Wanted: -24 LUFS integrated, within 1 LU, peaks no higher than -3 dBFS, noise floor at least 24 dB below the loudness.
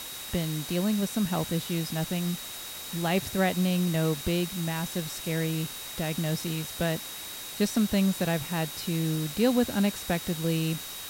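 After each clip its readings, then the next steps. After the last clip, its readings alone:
steady tone 3.8 kHz; tone level -43 dBFS; noise floor -40 dBFS; noise floor target -53 dBFS; loudness -28.5 LUFS; peak level -12.0 dBFS; loudness target -24.0 LUFS
-> band-stop 3.8 kHz, Q 30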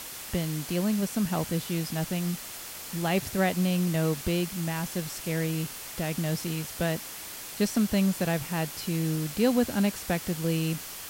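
steady tone not found; noise floor -41 dBFS; noise floor target -53 dBFS
-> noise print and reduce 12 dB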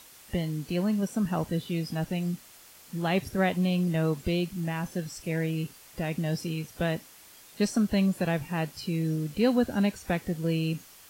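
noise floor -52 dBFS; noise floor target -54 dBFS
-> noise print and reduce 6 dB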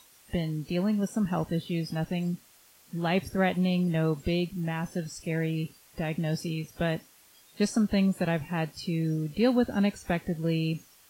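noise floor -58 dBFS; loudness -29.5 LUFS; peak level -12.5 dBFS; loudness target -24.0 LUFS
-> trim +5.5 dB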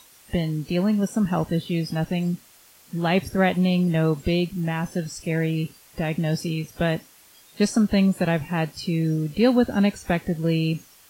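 loudness -24.0 LUFS; peak level -7.0 dBFS; noise floor -53 dBFS

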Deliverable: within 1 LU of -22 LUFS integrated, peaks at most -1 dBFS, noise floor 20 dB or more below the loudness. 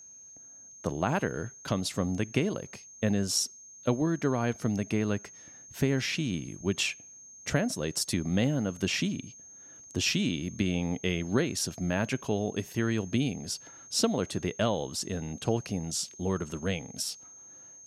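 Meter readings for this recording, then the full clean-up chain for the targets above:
steady tone 6.4 kHz; tone level -48 dBFS; loudness -30.5 LUFS; peak level -13.0 dBFS; loudness target -22.0 LUFS
-> band-stop 6.4 kHz, Q 30; trim +8.5 dB

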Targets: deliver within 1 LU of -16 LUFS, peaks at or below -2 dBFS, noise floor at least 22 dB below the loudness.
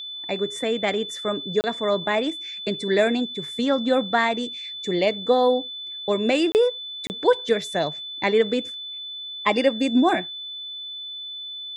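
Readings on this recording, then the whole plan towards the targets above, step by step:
dropouts 3; longest dropout 29 ms; steady tone 3.5 kHz; tone level -32 dBFS; loudness -23.5 LUFS; peak level -6.5 dBFS; loudness target -16.0 LUFS
-> interpolate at 1.61/6.52/7.07 s, 29 ms; band-stop 3.5 kHz, Q 30; trim +7.5 dB; peak limiter -2 dBFS

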